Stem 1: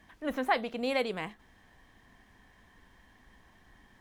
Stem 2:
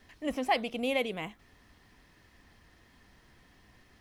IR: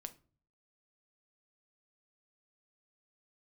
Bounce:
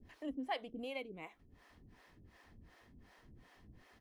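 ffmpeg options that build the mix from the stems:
-filter_complex "[0:a]asplit=3[a][b][c];[a]bandpass=f=270:t=q:w=8,volume=0dB[d];[b]bandpass=f=2.29k:t=q:w=8,volume=-6dB[e];[c]bandpass=f=3.01k:t=q:w=8,volume=-9dB[f];[d][e][f]amix=inputs=3:normalize=0,volume=-1.5dB,asplit=2[g][h];[1:a]tiltshelf=f=1.5k:g=4,adelay=0.5,volume=0.5dB[i];[h]apad=whole_len=176805[j];[i][j]sidechaincompress=threshold=-52dB:ratio=5:attack=16:release=601[k];[g][k]amix=inputs=2:normalize=0,acrossover=split=410[l][m];[l]aeval=exprs='val(0)*(1-1/2+1/2*cos(2*PI*2.7*n/s))':c=same[n];[m]aeval=exprs='val(0)*(1-1/2-1/2*cos(2*PI*2.7*n/s))':c=same[o];[n][o]amix=inputs=2:normalize=0"

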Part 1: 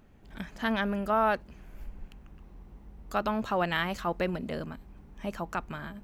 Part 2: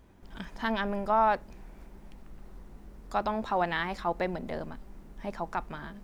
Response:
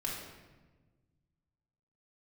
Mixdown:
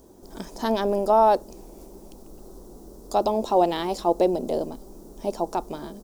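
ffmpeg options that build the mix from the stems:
-filter_complex "[0:a]highpass=f=220:w=0.5412,highpass=f=220:w=1.3066,acontrast=89,volume=-15dB[a];[1:a]firequalizer=gain_entry='entry(120,0);entry(350,14);entry(1400,-2);entry(2100,-18);entry(5600,-9)':delay=0.05:min_phase=1,aexciter=amount=15.4:drive=3.1:freq=3.2k,volume=0dB[b];[a][b]amix=inputs=2:normalize=0"

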